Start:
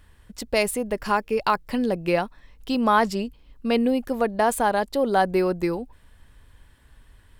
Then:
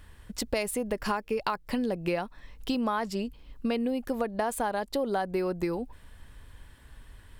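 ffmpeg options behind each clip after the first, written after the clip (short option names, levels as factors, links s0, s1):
-af "acompressor=threshold=0.0355:ratio=6,volume=1.33"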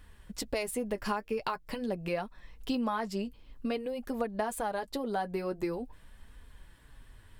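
-af "flanger=delay=3.9:depth=6.2:regen=-35:speed=0.47:shape=triangular"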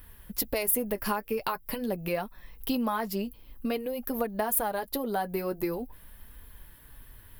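-af "aexciter=amount=10.3:drive=5.9:freq=11000,volume=1.33"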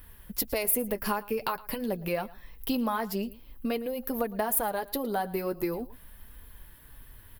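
-af "aecho=1:1:112:0.1"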